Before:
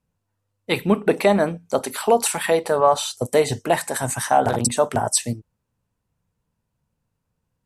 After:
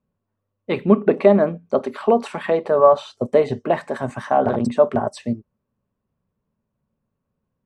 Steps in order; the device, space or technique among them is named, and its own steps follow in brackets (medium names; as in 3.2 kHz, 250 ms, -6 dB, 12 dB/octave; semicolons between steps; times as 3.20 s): inside a cardboard box (low-pass 2.8 kHz 12 dB/octave; small resonant body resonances 230/390/570/1100 Hz, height 10 dB, ringing for 35 ms); trim -4.5 dB